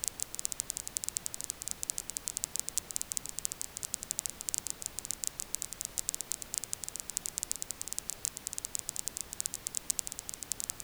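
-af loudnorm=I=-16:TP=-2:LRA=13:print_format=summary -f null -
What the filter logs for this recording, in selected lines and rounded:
Input Integrated:    -36.2 LUFS
Input True Peak:      -5.7 dBTP
Input LRA:             0.8 LU
Input Threshold:     -46.2 LUFS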